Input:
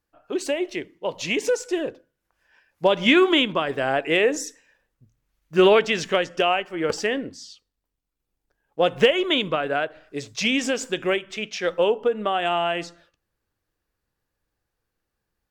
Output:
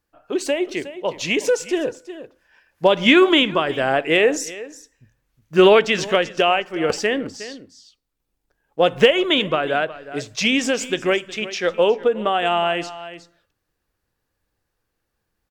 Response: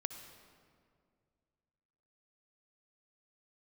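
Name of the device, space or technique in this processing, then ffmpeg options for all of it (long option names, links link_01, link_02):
ducked delay: -filter_complex "[0:a]asplit=3[link_01][link_02][link_03];[link_02]adelay=363,volume=-8dB[link_04];[link_03]apad=whole_len=699747[link_05];[link_04][link_05]sidechaincompress=threshold=-29dB:ratio=4:attack=16:release=1110[link_06];[link_01][link_06]amix=inputs=2:normalize=0,volume=3.5dB"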